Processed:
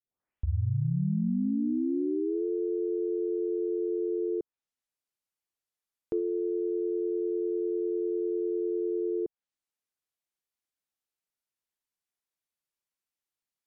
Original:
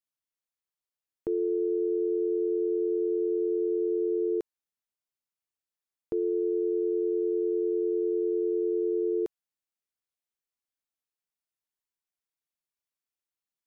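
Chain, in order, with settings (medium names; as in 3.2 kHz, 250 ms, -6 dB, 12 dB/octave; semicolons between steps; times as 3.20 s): tape start-up on the opening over 2.46 s; low-pass that closes with the level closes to 420 Hz, closed at -24.5 dBFS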